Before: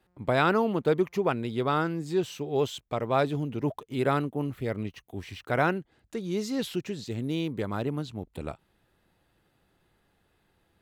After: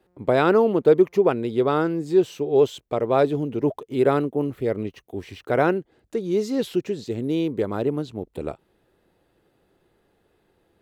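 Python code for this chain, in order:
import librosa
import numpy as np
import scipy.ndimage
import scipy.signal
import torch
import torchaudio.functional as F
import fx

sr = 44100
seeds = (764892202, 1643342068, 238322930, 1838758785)

y = fx.peak_eq(x, sr, hz=420.0, db=10.0, octaves=1.4)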